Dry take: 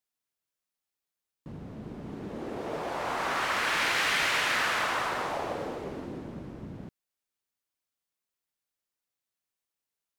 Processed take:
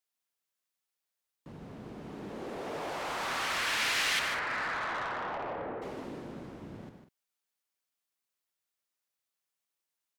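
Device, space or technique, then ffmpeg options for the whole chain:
one-band saturation: -filter_complex "[0:a]lowshelf=f=310:g=-8,asettb=1/sr,asplit=3[a][b][c];[a]atrim=end=4.194[d];[b]atrim=start=4.19:end=5.82,asetpts=PTS-STARTPTS,afade=t=in:d=0.004:c=qsin,afade=t=out:st=1.626:d=0.004:c=qsin,lowpass=f=1.9k:w=0.5412,lowpass=f=1.9k:w=1.3066[e];[c]atrim=start=5.816[f];[d][e]acrossfade=d=0.004:c1=hsin:c2=qsin[g];[g][f]acrossfade=d=0.004:c1=qsin:c2=hsin,aecho=1:1:91|151|197:0.282|0.376|0.178,acrossover=split=260|2400[h][i][j];[i]asoftclip=type=tanh:threshold=-33dB[k];[h][k][j]amix=inputs=3:normalize=0"

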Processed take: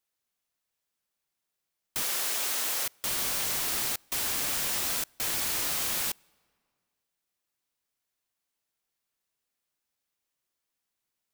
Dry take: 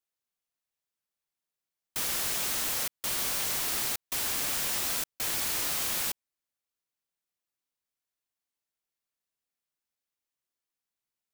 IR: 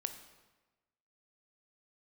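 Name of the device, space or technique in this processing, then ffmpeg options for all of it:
ducked reverb: -filter_complex "[0:a]asettb=1/sr,asplit=3[a][b][c];[a]atrim=end=2.034[d];[b]atrim=start=2.03:end=2.86,asetpts=PTS-STARTPTS,afade=t=in:d=0.004:c=qsin,afade=t=out:st=0.826:d=0.004:c=qsin,highpass=340[e];[c]atrim=start=2.856[f];[d][e]acrossfade=d=0.004:c1=hsin:c2=qsin[g];[g][f]acrossfade=d=0.004:c1=qsin:c2=hsin,asplit=3[h][i][j];[1:a]atrim=start_sample=2205[k];[i][k]afir=irnorm=-1:irlink=0[l];[j]apad=whole_len=499805[m];[l][m]sidechaincompress=threshold=-50dB:ratio=6:attack=47:release=558,volume=-0.5dB[n];[h][n]amix=inputs=2:normalize=0"

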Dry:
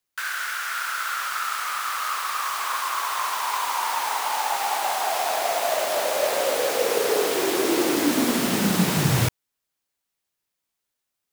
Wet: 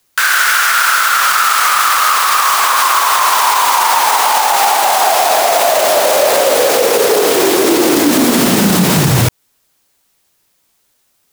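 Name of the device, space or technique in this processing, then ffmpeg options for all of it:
mastering chain: -af "equalizer=f=2.1k:t=o:w=2:g=-2.5,acompressor=threshold=-25dB:ratio=2.5,alimiter=level_in=23dB:limit=-1dB:release=50:level=0:latency=1,volume=-1dB"

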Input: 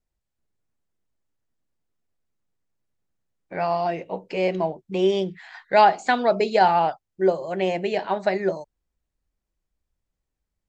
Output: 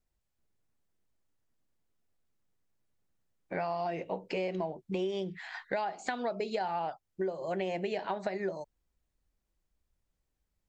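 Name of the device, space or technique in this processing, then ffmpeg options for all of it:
serial compression, peaks first: -af "acompressor=threshold=-25dB:ratio=6,acompressor=threshold=-34dB:ratio=2"

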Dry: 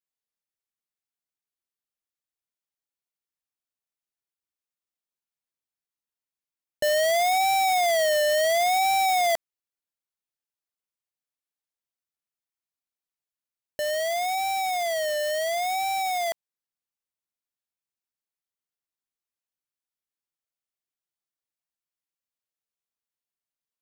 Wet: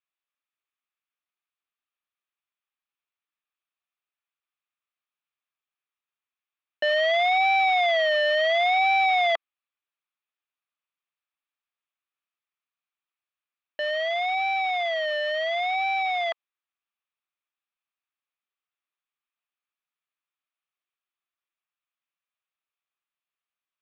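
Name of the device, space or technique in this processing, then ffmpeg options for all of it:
phone earpiece: -af "highpass=370,equalizer=f=470:t=q:w=4:g=-6,equalizer=f=1.2k:t=q:w=4:g=9,equalizer=f=1.7k:t=q:w=4:g=3,equalizer=f=2.5k:t=q:w=4:g=8,equalizer=f=3.5k:t=q:w=4:g=5,lowpass=f=3.6k:w=0.5412,lowpass=f=3.6k:w=1.3066"

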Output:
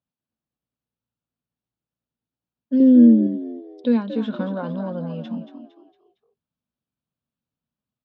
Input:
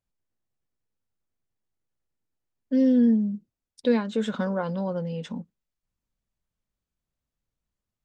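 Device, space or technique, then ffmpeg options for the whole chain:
frequency-shifting delay pedal into a guitar cabinet: -filter_complex "[0:a]asplit=5[a][b][c][d][e];[b]adelay=229,afreqshift=58,volume=-10dB[f];[c]adelay=458,afreqshift=116,volume=-17.5dB[g];[d]adelay=687,afreqshift=174,volume=-25.1dB[h];[e]adelay=916,afreqshift=232,volume=-32.6dB[i];[a][f][g][h][i]amix=inputs=5:normalize=0,highpass=110,equalizer=f=150:t=q:w=4:g=4,equalizer=f=240:t=q:w=4:g=7,equalizer=f=390:t=q:w=4:g=-3,equalizer=f=2k:t=q:w=4:g=-9,lowpass=f=4.1k:w=0.5412,lowpass=f=4.1k:w=1.3066,asettb=1/sr,asplit=3[j][k][l];[j]atrim=end=2.804[m];[k]atrim=start=2.8:end=3.27,asetpts=PTS-STARTPTS,afade=t=in:d=0.004:c=qsin,afade=t=out:st=0.466:d=0.004:c=qsin,equalizer=f=380:t=o:w=1.1:g=7.5[n];[l]atrim=start=3.266[o];[m][n]acrossfade=d=0.004:c1=hsin:c2=qsin[p];[p][o]acrossfade=d=0.004:c1=qsin:c2=hsin,volume=-1dB"

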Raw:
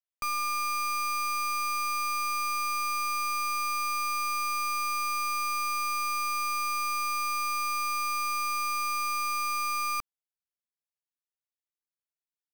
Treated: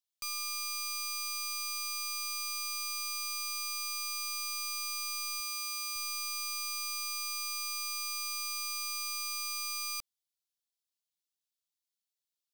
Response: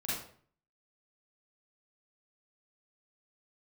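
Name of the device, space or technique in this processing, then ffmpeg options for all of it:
over-bright horn tweeter: -filter_complex "[0:a]asettb=1/sr,asplit=3[a][b][c];[a]atrim=end=5.404[d];[b]atrim=start=5.4:end=5.96,asetpts=PTS-STARTPTS,afade=t=in:d=0.004:c=qsin,afade=t=out:st=0.556:d=0.004:c=qsin,highpass=f=180:p=1[e];[c]atrim=start=5.956[f];[d][e]acrossfade=d=0.004:c1=hsin:c2=qsin[g];[g][f]acrossfade=d=0.004:c1=qsin:c2=hsin,highshelf=f=2.5k:t=q:w=1.5:g=12.5,alimiter=limit=-18.5dB:level=0:latency=1:release=21,equalizer=f=560:w=3.2:g=-3.5,volume=-8.5dB"

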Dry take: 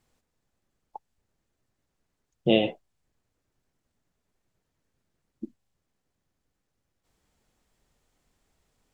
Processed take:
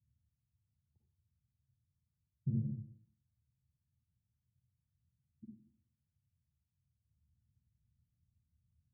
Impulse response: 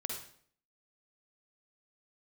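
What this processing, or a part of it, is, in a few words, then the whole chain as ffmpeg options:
club heard from the street: -filter_complex "[0:a]alimiter=limit=-11.5dB:level=0:latency=1,lowpass=f=130:w=0.5412,lowpass=f=130:w=1.3066[a];[1:a]atrim=start_sample=2205[b];[a][b]afir=irnorm=-1:irlink=0,highpass=f=70:w=0.5412,highpass=f=70:w=1.3066,volume=4.5dB"

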